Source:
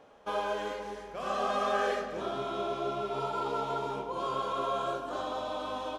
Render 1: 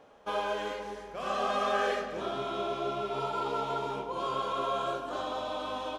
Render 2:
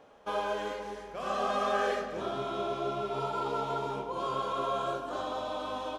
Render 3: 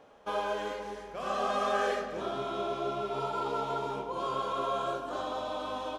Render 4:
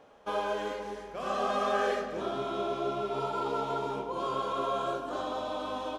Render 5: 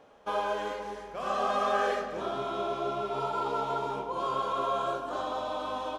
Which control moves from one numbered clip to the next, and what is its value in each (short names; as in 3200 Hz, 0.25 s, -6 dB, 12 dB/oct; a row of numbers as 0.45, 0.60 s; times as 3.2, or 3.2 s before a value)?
dynamic EQ, frequency: 2700, 110, 8200, 290, 960 Hz